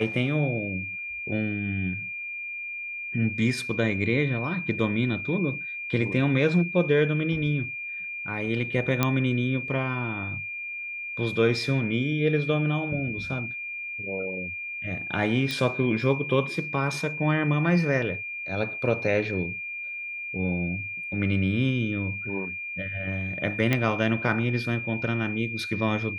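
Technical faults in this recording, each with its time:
whine 2.4 kHz -32 dBFS
9.03 s: pop -7 dBFS
15.51 s: pop
23.73 s: pop -10 dBFS

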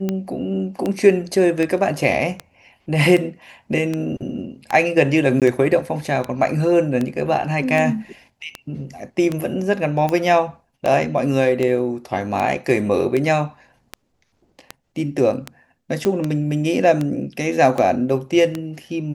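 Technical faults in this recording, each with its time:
tick 78 rpm -10 dBFS
5.40–5.42 s: dropout 17 ms
16.05 s: pop -8 dBFS

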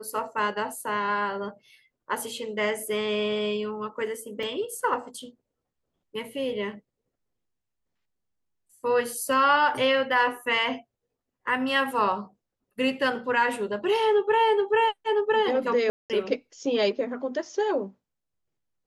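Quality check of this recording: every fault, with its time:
4.43 s: dropout 2.7 ms
15.90–16.10 s: dropout 198 ms

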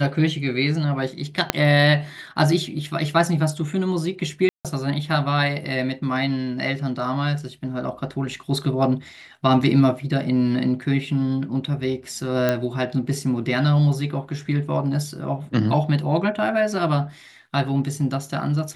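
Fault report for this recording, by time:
1.50 s: pop -1 dBFS
4.49–4.65 s: dropout 157 ms
12.49 s: pop -7 dBFS

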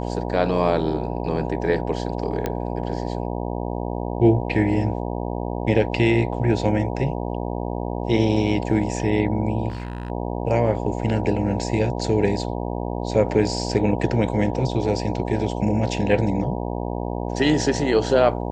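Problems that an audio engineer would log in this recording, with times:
buzz 60 Hz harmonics 16 -27 dBFS
2.46 s: pop -11 dBFS
9.68–10.10 s: clipped -25 dBFS

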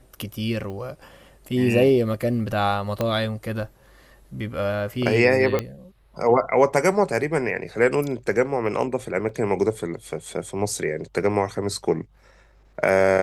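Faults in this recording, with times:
0.70 s: pop -25 dBFS
3.01 s: pop -10 dBFS
5.59 s: pop -10 dBFS
9.29 s: dropout 2.5 ms

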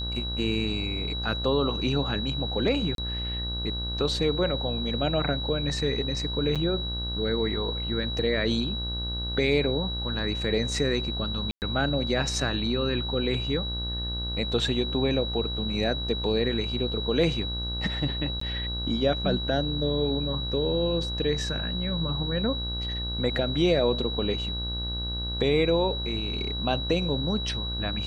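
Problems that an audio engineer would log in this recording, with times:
buzz 60 Hz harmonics 28 -33 dBFS
whine 3.9 kHz -32 dBFS
2.95–2.98 s: dropout 32 ms
6.55–6.56 s: dropout 6.8 ms
11.51–11.62 s: dropout 109 ms
18.40–18.41 s: dropout 14 ms

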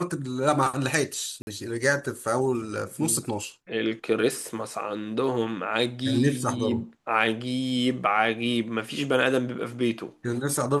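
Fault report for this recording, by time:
1.42–1.47 s: dropout 51 ms

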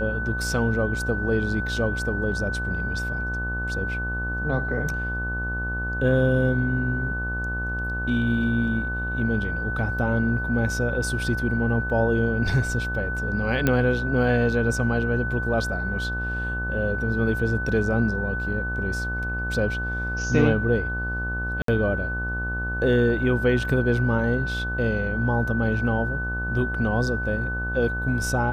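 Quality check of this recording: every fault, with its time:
buzz 60 Hz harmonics 23 -30 dBFS
whine 1.5 kHz -28 dBFS
13.67 s: pop -8 dBFS
21.62–21.68 s: dropout 63 ms

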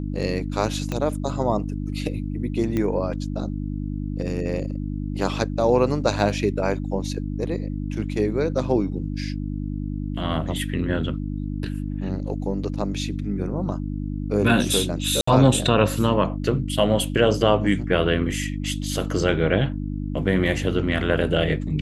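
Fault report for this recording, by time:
hum 50 Hz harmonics 6 -28 dBFS
0.92 s: pop -13 dBFS
2.77 s: pop -13 dBFS
15.21–15.27 s: dropout 64 ms

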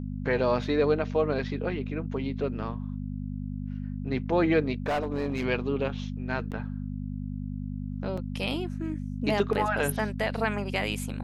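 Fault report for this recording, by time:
hum 50 Hz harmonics 5 -34 dBFS
4.86–5.46 s: clipped -24 dBFS
6.51–6.52 s: dropout 8.2 ms
8.17–8.18 s: dropout 5.1 ms

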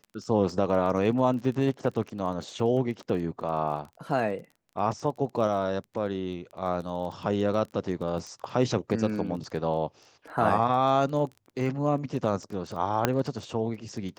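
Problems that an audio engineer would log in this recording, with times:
crackle 19 per s -36 dBFS
13.05 s: pop -7 dBFS

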